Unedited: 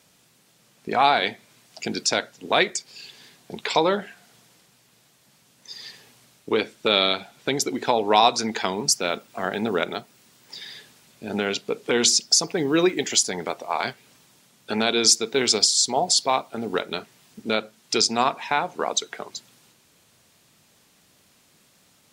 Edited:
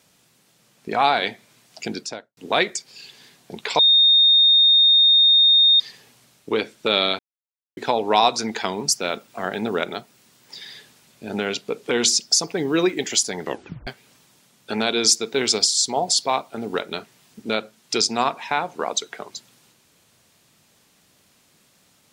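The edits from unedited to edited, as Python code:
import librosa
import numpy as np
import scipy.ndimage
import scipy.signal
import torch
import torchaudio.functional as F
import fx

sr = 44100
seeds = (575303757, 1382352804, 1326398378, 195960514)

y = fx.studio_fade_out(x, sr, start_s=1.84, length_s=0.53)
y = fx.edit(y, sr, fx.bleep(start_s=3.79, length_s=2.01, hz=3680.0, db=-11.0),
    fx.silence(start_s=7.19, length_s=0.58),
    fx.tape_stop(start_s=13.42, length_s=0.45), tone=tone)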